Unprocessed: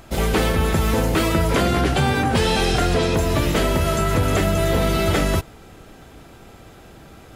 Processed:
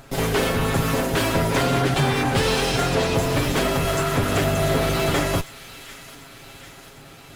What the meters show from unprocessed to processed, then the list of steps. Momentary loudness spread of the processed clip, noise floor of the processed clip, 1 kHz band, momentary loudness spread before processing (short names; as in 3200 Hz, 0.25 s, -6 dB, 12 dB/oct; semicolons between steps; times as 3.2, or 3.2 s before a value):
18 LU, -44 dBFS, -1.0 dB, 1 LU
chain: minimum comb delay 7.3 ms; on a send: thin delay 0.746 s, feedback 63%, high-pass 1800 Hz, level -14 dB